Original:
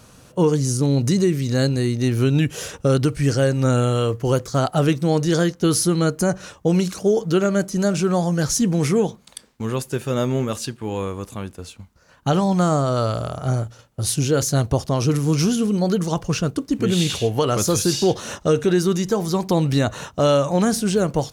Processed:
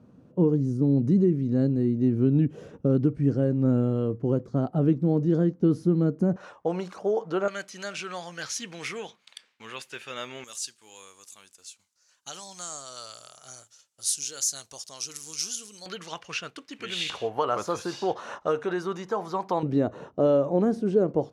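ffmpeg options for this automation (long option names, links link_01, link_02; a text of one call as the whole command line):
ffmpeg -i in.wav -af "asetnsamples=nb_out_samples=441:pad=0,asendcmd='6.36 bandpass f 850;7.48 bandpass f 2500;10.44 bandpass f 7000;15.86 bandpass f 2400;17.1 bandpass f 990;19.63 bandpass f 370',bandpass=frequency=240:width_type=q:width=1.4:csg=0" out.wav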